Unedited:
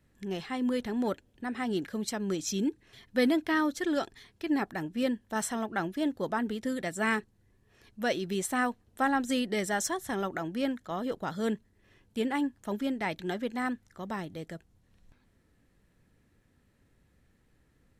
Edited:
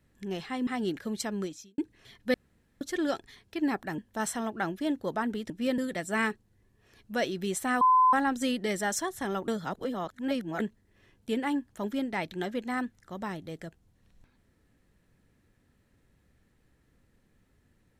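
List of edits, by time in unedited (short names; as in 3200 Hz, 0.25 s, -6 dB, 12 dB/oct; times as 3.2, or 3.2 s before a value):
0.67–1.55 cut
2.26–2.66 fade out quadratic
3.22–3.69 room tone
4.86–5.14 move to 6.66
8.69–9.01 bleep 1020 Hz -17.5 dBFS
10.36–11.48 reverse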